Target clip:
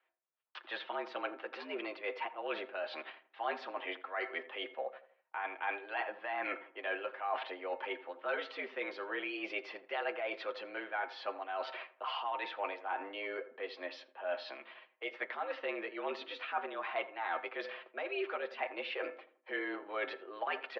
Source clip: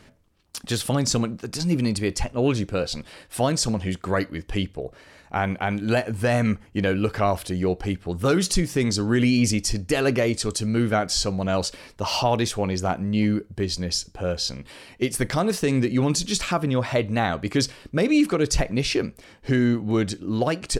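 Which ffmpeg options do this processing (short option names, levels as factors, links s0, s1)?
-filter_complex "[0:a]bandreject=f=413.8:t=h:w=4,bandreject=f=827.6:t=h:w=4,bandreject=f=1241.4:t=h:w=4,bandreject=f=1655.2:t=h:w=4,bandreject=f=2069:t=h:w=4,agate=range=0.0562:threshold=0.00891:ratio=16:detection=peak,acrossover=split=580 2800:gain=0.126 1 0.224[s0][s1][s2];[s0][s1][s2]amix=inputs=3:normalize=0,aecho=1:1:7.2:0.57,areverse,acompressor=threshold=0.0141:ratio=5,areverse,tremolo=f=2.3:d=0.3,asplit=2[s3][s4];[s4]adelay=83,lowpass=f=1300:p=1,volume=0.2,asplit=2[s5][s6];[s6]adelay=83,lowpass=f=1300:p=1,volume=0.43,asplit=2[s7][s8];[s8]adelay=83,lowpass=f=1300:p=1,volume=0.43,asplit=2[s9][s10];[s10]adelay=83,lowpass=f=1300:p=1,volume=0.43[s11];[s5][s7][s9][s11]amix=inputs=4:normalize=0[s12];[s3][s12]amix=inputs=2:normalize=0,highpass=f=220:t=q:w=0.5412,highpass=f=220:t=q:w=1.307,lowpass=f=3500:t=q:w=0.5176,lowpass=f=3500:t=q:w=0.7071,lowpass=f=3500:t=q:w=1.932,afreqshift=91,volume=1.41"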